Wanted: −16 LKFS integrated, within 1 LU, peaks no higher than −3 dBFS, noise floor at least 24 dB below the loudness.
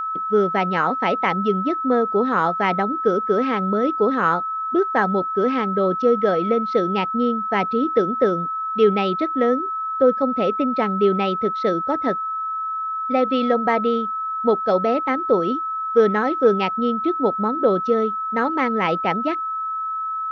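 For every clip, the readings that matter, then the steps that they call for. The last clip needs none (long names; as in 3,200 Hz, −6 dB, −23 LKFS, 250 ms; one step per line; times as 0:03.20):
interfering tone 1,300 Hz; level of the tone −23 dBFS; integrated loudness −20.5 LKFS; sample peak −5.0 dBFS; target loudness −16.0 LKFS
→ notch filter 1,300 Hz, Q 30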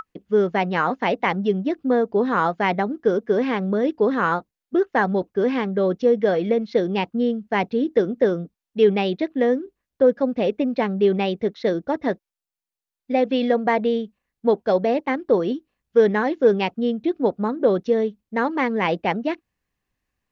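interfering tone none found; integrated loudness −21.5 LKFS; sample peak −6.0 dBFS; target loudness −16.0 LKFS
→ level +5.5 dB
brickwall limiter −3 dBFS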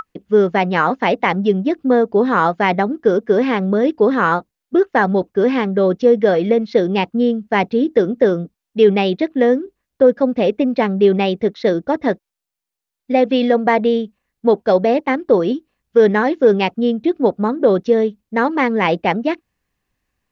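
integrated loudness −16.5 LKFS; sample peak −3.0 dBFS; background noise floor −83 dBFS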